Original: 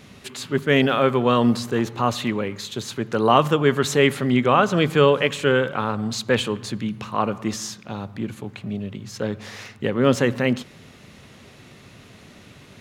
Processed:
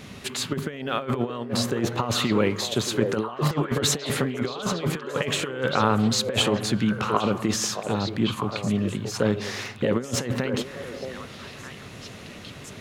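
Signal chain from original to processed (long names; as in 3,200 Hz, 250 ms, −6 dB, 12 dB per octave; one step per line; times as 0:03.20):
compressor whose output falls as the input rises −24 dBFS, ratio −0.5
echo through a band-pass that steps 626 ms, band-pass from 500 Hz, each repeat 1.4 octaves, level −2.5 dB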